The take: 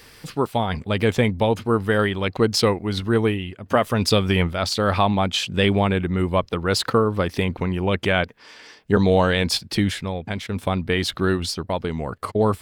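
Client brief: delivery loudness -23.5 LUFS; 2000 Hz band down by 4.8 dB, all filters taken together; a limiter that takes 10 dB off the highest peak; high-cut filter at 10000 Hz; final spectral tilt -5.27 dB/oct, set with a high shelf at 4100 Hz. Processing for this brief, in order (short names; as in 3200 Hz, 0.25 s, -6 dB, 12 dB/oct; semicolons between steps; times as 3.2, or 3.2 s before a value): LPF 10000 Hz; bell 2000 Hz -7 dB; high shelf 4100 Hz +3 dB; gain +2 dB; limiter -12.5 dBFS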